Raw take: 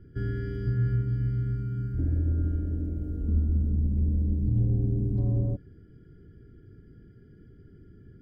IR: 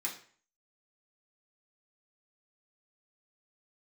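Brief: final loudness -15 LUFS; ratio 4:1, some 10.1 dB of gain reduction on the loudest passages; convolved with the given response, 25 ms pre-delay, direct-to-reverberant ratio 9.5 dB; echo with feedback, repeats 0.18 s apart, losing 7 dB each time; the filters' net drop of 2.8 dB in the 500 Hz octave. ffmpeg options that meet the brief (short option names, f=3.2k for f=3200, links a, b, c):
-filter_complex "[0:a]equalizer=f=500:t=o:g=-4,acompressor=threshold=-33dB:ratio=4,aecho=1:1:180|360|540|720|900:0.447|0.201|0.0905|0.0407|0.0183,asplit=2[a][b];[1:a]atrim=start_sample=2205,adelay=25[c];[b][c]afir=irnorm=-1:irlink=0,volume=-11.5dB[d];[a][d]amix=inputs=2:normalize=0,volume=21.5dB"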